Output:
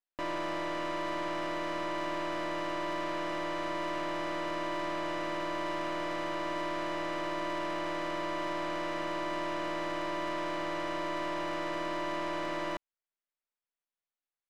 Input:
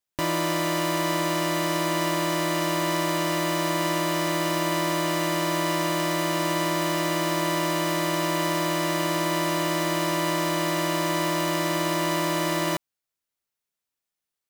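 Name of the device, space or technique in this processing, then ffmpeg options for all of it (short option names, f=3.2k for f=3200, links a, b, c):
crystal radio: -af "highpass=320,lowpass=2.8k,aeval=exprs='if(lt(val(0),0),0.447*val(0),val(0))':c=same,volume=-4.5dB"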